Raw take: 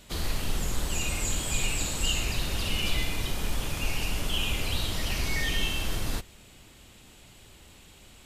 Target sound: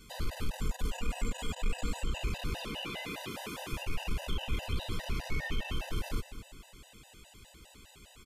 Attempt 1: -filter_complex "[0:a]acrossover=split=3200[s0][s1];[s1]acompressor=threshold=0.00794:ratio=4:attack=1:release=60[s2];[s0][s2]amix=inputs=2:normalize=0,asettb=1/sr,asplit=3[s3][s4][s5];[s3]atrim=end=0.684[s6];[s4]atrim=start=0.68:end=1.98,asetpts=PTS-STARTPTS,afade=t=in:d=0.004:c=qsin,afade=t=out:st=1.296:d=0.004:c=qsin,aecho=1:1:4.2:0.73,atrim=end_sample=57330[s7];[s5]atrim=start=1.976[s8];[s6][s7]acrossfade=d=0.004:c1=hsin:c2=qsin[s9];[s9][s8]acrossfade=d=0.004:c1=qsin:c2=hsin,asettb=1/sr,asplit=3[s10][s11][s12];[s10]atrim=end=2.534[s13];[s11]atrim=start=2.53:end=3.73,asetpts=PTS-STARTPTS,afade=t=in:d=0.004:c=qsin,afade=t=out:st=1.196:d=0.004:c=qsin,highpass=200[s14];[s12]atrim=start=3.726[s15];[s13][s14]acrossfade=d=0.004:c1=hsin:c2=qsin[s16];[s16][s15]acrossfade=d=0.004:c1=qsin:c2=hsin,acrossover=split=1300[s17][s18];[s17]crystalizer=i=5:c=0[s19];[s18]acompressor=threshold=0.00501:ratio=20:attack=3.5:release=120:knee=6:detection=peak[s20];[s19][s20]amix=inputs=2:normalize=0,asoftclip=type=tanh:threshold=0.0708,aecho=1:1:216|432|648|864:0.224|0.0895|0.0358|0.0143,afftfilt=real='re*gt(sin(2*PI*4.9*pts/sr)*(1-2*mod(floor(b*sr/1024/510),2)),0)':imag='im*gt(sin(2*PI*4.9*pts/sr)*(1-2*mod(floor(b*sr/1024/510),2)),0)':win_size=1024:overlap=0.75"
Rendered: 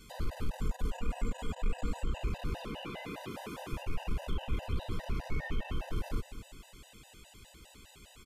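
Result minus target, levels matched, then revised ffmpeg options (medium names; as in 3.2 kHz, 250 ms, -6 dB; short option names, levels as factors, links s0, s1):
compression: peak gain reduction +10 dB
-filter_complex "[0:a]acrossover=split=3200[s0][s1];[s1]acompressor=threshold=0.00794:ratio=4:attack=1:release=60[s2];[s0][s2]amix=inputs=2:normalize=0,asettb=1/sr,asplit=3[s3][s4][s5];[s3]atrim=end=0.684[s6];[s4]atrim=start=0.68:end=1.98,asetpts=PTS-STARTPTS,afade=t=in:d=0.004:c=qsin,afade=t=out:st=1.296:d=0.004:c=qsin,aecho=1:1:4.2:0.73,atrim=end_sample=57330[s7];[s5]atrim=start=1.976[s8];[s6][s7]acrossfade=d=0.004:c1=hsin:c2=qsin[s9];[s9][s8]acrossfade=d=0.004:c1=qsin:c2=hsin,asettb=1/sr,asplit=3[s10][s11][s12];[s10]atrim=end=2.534[s13];[s11]atrim=start=2.53:end=3.73,asetpts=PTS-STARTPTS,afade=t=in:d=0.004:c=qsin,afade=t=out:st=1.196:d=0.004:c=qsin,highpass=200[s14];[s12]atrim=start=3.726[s15];[s13][s14]acrossfade=d=0.004:c1=hsin:c2=qsin[s16];[s16][s15]acrossfade=d=0.004:c1=qsin:c2=hsin,acrossover=split=1300[s17][s18];[s17]crystalizer=i=5:c=0[s19];[s18]acompressor=threshold=0.0168:ratio=20:attack=3.5:release=120:knee=6:detection=peak[s20];[s19][s20]amix=inputs=2:normalize=0,asoftclip=type=tanh:threshold=0.0708,aecho=1:1:216|432|648|864:0.224|0.0895|0.0358|0.0143,afftfilt=real='re*gt(sin(2*PI*4.9*pts/sr)*(1-2*mod(floor(b*sr/1024/510),2)),0)':imag='im*gt(sin(2*PI*4.9*pts/sr)*(1-2*mod(floor(b*sr/1024/510),2)),0)':win_size=1024:overlap=0.75"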